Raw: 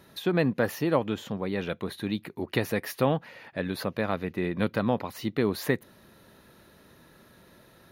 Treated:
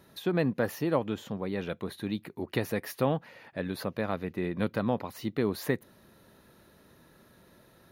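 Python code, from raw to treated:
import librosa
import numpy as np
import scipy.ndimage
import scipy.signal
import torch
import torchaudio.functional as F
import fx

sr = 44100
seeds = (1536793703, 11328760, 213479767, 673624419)

y = fx.peak_eq(x, sr, hz=2700.0, db=-2.5, octaves=2.1)
y = y * librosa.db_to_amplitude(-2.5)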